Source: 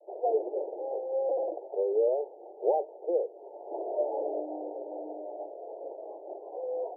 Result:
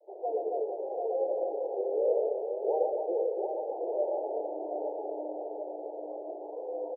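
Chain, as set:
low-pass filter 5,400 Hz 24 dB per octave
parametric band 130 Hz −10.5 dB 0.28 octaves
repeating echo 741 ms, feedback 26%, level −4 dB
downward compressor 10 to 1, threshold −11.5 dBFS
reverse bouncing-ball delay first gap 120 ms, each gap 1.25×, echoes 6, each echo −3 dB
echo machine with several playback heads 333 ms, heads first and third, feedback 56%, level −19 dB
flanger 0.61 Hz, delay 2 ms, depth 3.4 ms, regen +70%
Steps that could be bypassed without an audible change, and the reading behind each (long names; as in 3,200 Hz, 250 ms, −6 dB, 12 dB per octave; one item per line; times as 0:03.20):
low-pass filter 5,400 Hz: nothing at its input above 960 Hz
parametric band 130 Hz: nothing at its input below 290 Hz
downward compressor, threshold −11.5 dBFS: peak of its input −13.5 dBFS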